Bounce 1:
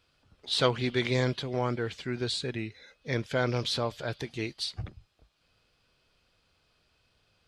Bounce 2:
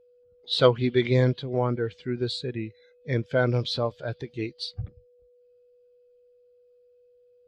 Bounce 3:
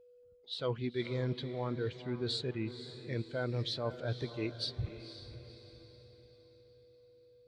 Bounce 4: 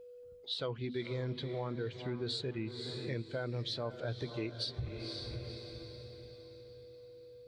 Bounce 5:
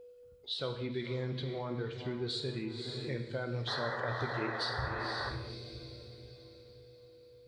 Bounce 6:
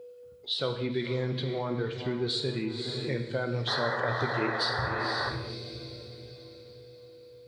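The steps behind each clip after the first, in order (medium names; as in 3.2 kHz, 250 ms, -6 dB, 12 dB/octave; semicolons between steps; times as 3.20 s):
whistle 490 Hz -52 dBFS; spectral contrast expander 1.5:1; trim +6 dB
reverse; compression 6:1, threshold -31 dBFS, peak gain reduction 17.5 dB; reverse; echo that smears into a reverb 508 ms, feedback 45%, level -11.5 dB; trim -1.5 dB
hum notches 50/100/150/200/250 Hz; compression 4:1, threshold -45 dBFS, peak gain reduction 13.5 dB; trim +8.5 dB
painted sound noise, 3.67–5.30 s, 400–2000 Hz -40 dBFS; gated-style reverb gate 290 ms falling, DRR 5 dB
high-pass 100 Hz; trim +6.5 dB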